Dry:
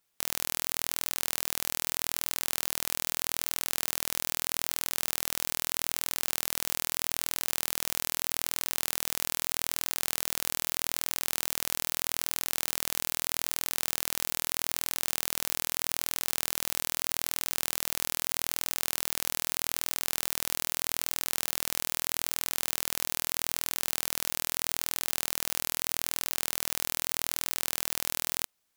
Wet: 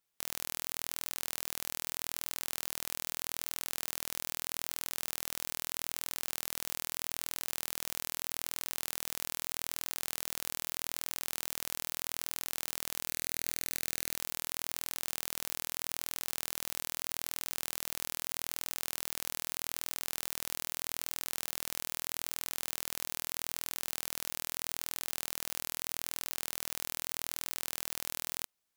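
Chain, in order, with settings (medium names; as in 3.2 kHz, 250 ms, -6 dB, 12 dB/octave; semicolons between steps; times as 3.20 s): 13.05–14.16 s: doubling 25 ms -2.5 dB; trim -6.5 dB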